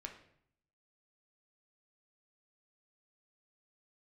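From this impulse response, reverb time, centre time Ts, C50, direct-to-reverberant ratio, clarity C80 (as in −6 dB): 0.65 s, 17 ms, 8.5 dB, 2.5 dB, 12.0 dB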